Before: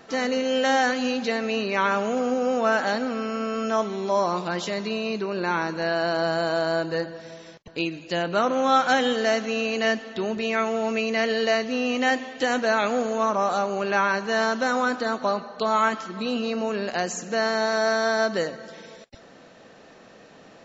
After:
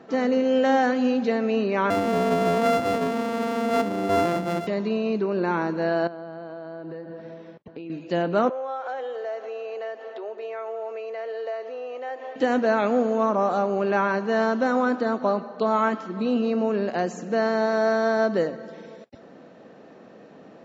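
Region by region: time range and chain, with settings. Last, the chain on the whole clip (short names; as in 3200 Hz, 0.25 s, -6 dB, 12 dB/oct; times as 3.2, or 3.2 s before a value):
1.9–4.67 sample sorter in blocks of 64 samples + low shelf 150 Hz +6.5 dB
6.07–7.9 compressor 8:1, threshold -35 dBFS + air absorption 170 m
8.49–12.36 tilt shelf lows +5.5 dB, about 1500 Hz + compressor, threshold -27 dBFS + inverse Chebyshev high-pass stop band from 180 Hz, stop band 50 dB
whole clip: HPF 230 Hz 12 dB/oct; tilt -4 dB/oct; gain -1 dB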